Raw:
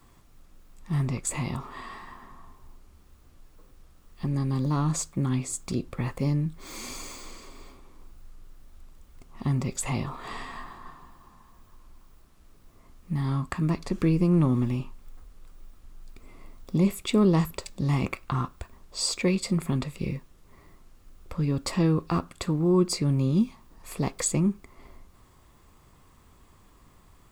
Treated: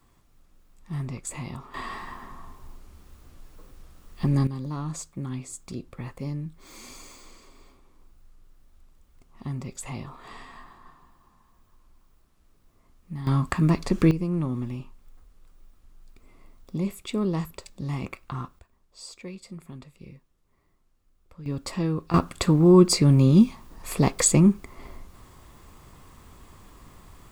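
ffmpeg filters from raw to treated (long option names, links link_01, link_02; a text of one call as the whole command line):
ffmpeg -i in.wav -af "asetnsamples=nb_out_samples=441:pad=0,asendcmd='1.74 volume volume 5.5dB;4.47 volume volume -6.5dB;13.27 volume volume 5dB;14.11 volume volume -5.5dB;18.59 volume volume -15dB;21.46 volume volume -3.5dB;22.14 volume volume 7dB',volume=-5dB" out.wav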